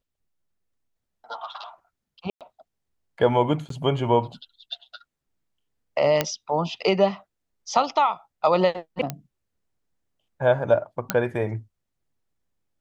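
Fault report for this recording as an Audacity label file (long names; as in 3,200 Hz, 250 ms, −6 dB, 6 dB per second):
2.300000	2.410000	drop-out 107 ms
3.690000	3.700000	drop-out 13 ms
6.210000	6.210000	click −5 dBFS
9.100000	9.100000	click −12 dBFS
11.100000	11.100000	click −5 dBFS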